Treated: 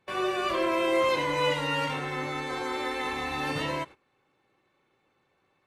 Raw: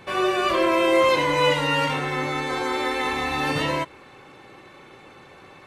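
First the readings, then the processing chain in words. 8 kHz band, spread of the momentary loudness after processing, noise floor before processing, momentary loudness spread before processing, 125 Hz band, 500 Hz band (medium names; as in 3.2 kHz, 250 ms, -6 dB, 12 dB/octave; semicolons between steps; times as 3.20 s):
-6.5 dB, 7 LU, -48 dBFS, 7 LU, -6.5 dB, -6.5 dB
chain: gate -36 dBFS, range -18 dB; trim -6.5 dB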